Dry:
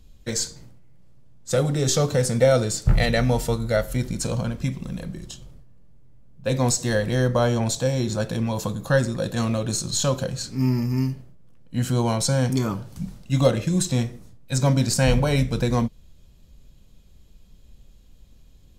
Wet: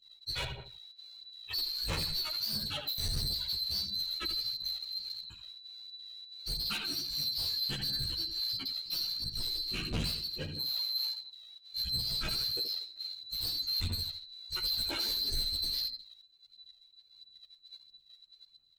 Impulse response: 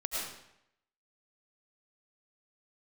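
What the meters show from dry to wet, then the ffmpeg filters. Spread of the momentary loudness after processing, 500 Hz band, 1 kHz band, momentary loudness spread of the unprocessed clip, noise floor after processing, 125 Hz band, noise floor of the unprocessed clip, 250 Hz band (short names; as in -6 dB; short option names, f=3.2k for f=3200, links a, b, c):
15 LU, -28.0 dB, -19.0 dB, 11 LU, -63 dBFS, -22.0 dB, -51 dBFS, -24.0 dB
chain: -filter_complex "[0:a]afftfilt=real='real(if(lt(b,736),b+184*(1-2*mod(floor(b/184),2)),b),0)':imag='imag(if(lt(b,736),b+184*(1-2*mod(floor(b/184),2)),b),0)':win_size=2048:overlap=0.75,acrossover=split=7600[a][b];[b]acompressor=threshold=-45dB:ratio=4:attack=1:release=60[c];[a][c]amix=inputs=2:normalize=0,afftdn=nr=17:nf=-32,bass=f=250:g=13,treble=f=4k:g=-6,asplit=2[d][e];[e]adelay=78,lowpass=f=4.6k:p=1,volume=-8.5dB,asplit=2[f][g];[g]adelay=78,lowpass=f=4.6k:p=1,volume=0.38,asplit=2[h][i];[i]adelay=78,lowpass=f=4.6k:p=1,volume=0.38,asplit=2[j][k];[k]adelay=78,lowpass=f=4.6k:p=1,volume=0.38[l];[d][f][h][j][l]amix=inputs=5:normalize=0,volume=18.5dB,asoftclip=hard,volume=-18.5dB,aphaser=in_gain=1:out_gain=1:delay=3.2:decay=0.61:speed=1.5:type=sinusoidal,asoftclip=type=tanh:threshold=-23.5dB,asplit=2[m][n];[n]adelay=11.9,afreqshift=-0.26[o];[m][o]amix=inputs=2:normalize=1,volume=-4dB"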